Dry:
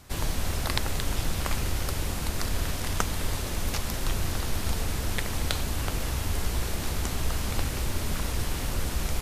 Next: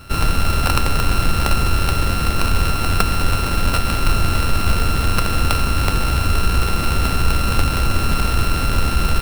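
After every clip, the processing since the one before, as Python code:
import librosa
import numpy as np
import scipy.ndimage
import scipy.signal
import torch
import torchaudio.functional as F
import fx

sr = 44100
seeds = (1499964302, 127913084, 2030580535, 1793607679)

y = np.r_[np.sort(x[:len(x) // 32 * 32].reshape(-1, 32), axis=1).ravel(), x[len(x) // 32 * 32:]]
y = fx.fold_sine(y, sr, drive_db=8, ceiling_db=-3.5)
y = fx.sample_hold(y, sr, seeds[0], rate_hz=6800.0, jitter_pct=0)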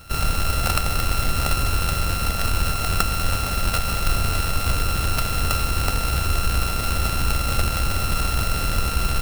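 y = fx.lower_of_two(x, sr, delay_ms=1.5)
y = fx.high_shelf(y, sr, hz=6100.0, db=7.0)
y = y * 10.0 ** (-4.0 / 20.0)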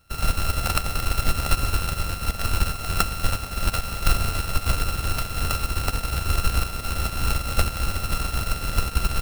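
y = fx.upward_expand(x, sr, threshold_db=-29.0, expansion=2.5)
y = y * 10.0 ** (3.5 / 20.0)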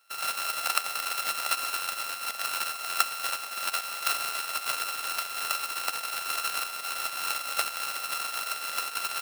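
y = scipy.signal.sosfilt(scipy.signal.butter(2, 870.0, 'highpass', fs=sr, output='sos'), x)
y = y * 10.0 ** (-1.0 / 20.0)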